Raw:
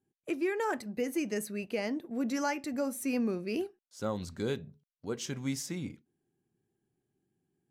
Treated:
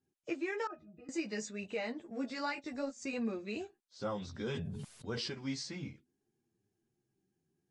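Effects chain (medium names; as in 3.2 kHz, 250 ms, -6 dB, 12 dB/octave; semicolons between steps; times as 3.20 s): knee-point frequency compression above 2.9 kHz 1.5:1; 2.55–3.13 s: transient shaper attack +2 dB, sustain -12 dB; chorus voices 2, 0.6 Hz, delay 12 ms, depth 3.4 ms; 0.67–1.09 s: pitch-class resonator D#, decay 0.12 s; dynamic bell 260 Hz, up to -6 dB, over -44 dBFS, Q 0.83; 4.25–5.33 s: decay stretcher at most 21 dB/s; trim +1 dB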